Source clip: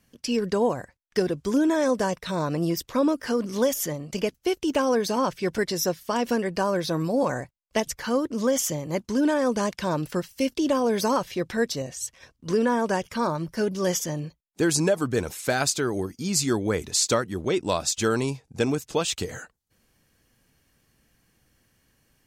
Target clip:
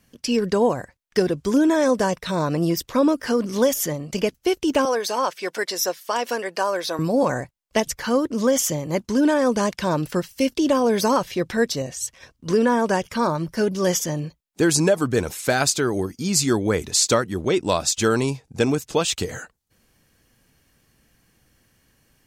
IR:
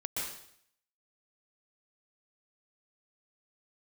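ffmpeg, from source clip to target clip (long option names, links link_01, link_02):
-filter_complex "[0:a]asettb=1/sr,asplit=3[link_01][link_02][link_03];[link_01]atrim=end=4.854[link_04];[link_02]atrim=start=4.85:end=6.99,asetpts=PTS-STARTPTS,afade=type=in:duration=0.004:curve=qsin,afade=type=out:start_time=2.136:duration=0.004:curve=qsin,highpass=520[link_05];[link_03]atrim=start=6.986[link_06];[link_04][link_05]acrossfade=duration=0.004:curve1=hsin:curve2=qsin[link_07];[link_07][link_06]acrossfade=duration=0.004:curve1=qsin:curve2=hsin,volume=4dB"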